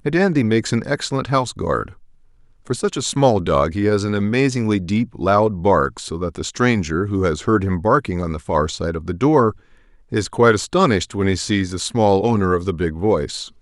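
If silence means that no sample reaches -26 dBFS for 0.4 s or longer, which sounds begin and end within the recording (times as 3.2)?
2.7–9.51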